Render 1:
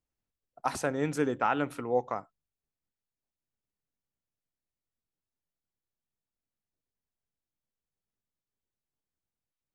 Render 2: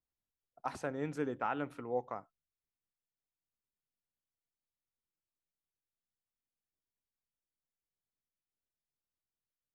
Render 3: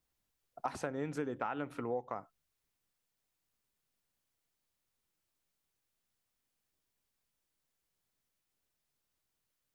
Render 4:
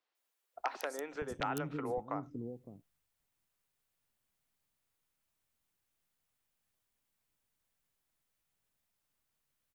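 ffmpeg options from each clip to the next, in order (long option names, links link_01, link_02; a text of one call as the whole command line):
ffmpeg -i in.wav -af "highshelf=frequency=4900:gain=-10.5,volume=-7.5dB" out.wav
ffmpeg -i in.wav -af "acompressor=threshold=-44dB:ratio=6,volume=10dB" out.wav
ffmpeg -i in.wav -filter_complex "[0:a]aeval=exprs='(mod(13.3*val(0)+1,2)-1)/13.3':channel_layout=same,acrossover=split=360|5100[link_01][link_02][link_03];[link_03]adelay=150[link_04];[link_01]adelay=560[link_05];[link_05][link_02][link_04]amix=inputs=3:normalize=0,volume=1.5dB" out.wav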